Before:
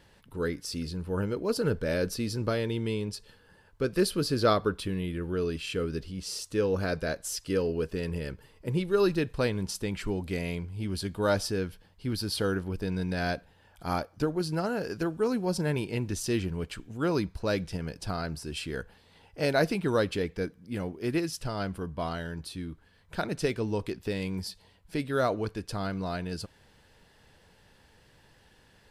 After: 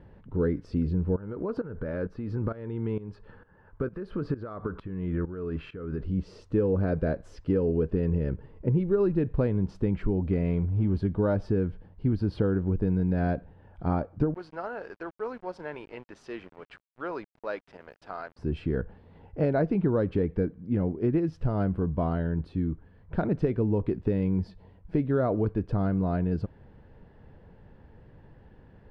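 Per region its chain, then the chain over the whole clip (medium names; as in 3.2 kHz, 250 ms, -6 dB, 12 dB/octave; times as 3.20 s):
1.16–6.04 s: peaking EQ 1.3 kHz +11 dB 1.6 oct + compression 10:1, threshold -31 dBFS + tremolo saw up 2.2 Hz, depth 85%
10.32–10.98 s: companding laws mixed up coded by mu + elliptic low-pass 9.2 kHz
14.34–18.39 s: high-pass 930 Hz + small samples zeroed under -47 dBFS
whole clip: low-pass 1.8 kHz 12 dB/octave; tilt shelf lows +7 dB, about 690 Hz; compression, threshold -25 dBFS; trim +4 dB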